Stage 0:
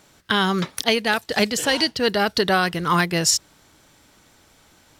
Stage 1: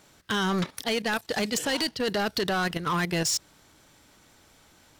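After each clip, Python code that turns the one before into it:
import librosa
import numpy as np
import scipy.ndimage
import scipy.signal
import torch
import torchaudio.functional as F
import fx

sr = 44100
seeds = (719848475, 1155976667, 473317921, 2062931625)

y = fx.level_steps(x, sr, step_db=12)
y = 10.0 ** (-23.5 / 20.0) * np.tanh(y / 10.0 ** (-23.5 / 20.0))
y = F.gain(torch.from_numpy(y), 2.0).numpy()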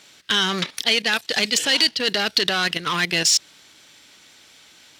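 y = fx.weighting(x, sr, curve='D')
y = F.gain(torch.from_numpy(y), 1.5).numpy()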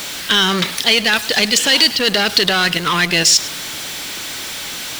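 y = x + 0.5 * 10.0 ** (-26.5 / 20.0) * np.sign(x)
y = y + 10.0 ** (-17.5 / 20.0) * np.pad(y, (int(105 * sr / 1000.0), 0))[:len(y)]
y = F.gain(torch.from_numpy(y), 4.5).numpy()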